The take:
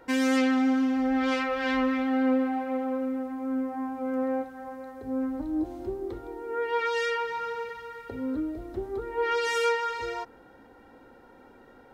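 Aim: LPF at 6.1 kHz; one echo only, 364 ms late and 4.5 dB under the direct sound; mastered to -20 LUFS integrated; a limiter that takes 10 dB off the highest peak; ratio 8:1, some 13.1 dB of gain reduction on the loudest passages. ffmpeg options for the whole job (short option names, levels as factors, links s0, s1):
-af "lowpass=6100,acompressor=threshold=0.0178:ratio=8,alimiter=level_in=3.55:limit=0.0631:level=0:latency=1,volume=0.282,aecho=1:1:364:0.596,volume=10.6"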